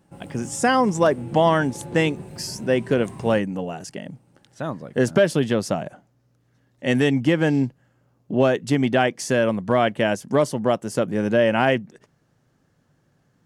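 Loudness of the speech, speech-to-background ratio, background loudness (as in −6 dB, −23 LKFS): −21.5 LKFS, 17.0 dB, −38.5 LKFS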